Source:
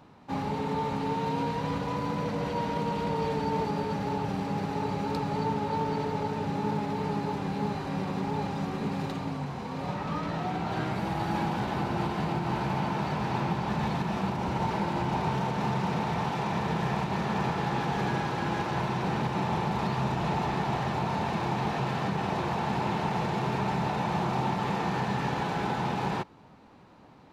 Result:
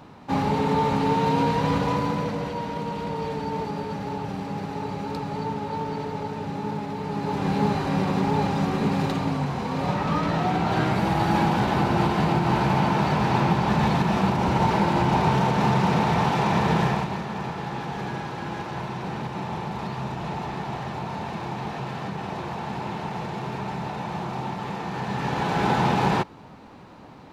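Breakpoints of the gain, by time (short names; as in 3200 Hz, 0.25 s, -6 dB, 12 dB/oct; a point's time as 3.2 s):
1.88 s +8 dB
2.59 s 0 dB
7.06 s 0 dB
7.5 s +8 dB
16.81 s +8 dB
17.26 s -2 dB
24.88 s -2 dB
25.72 s +8.5 dB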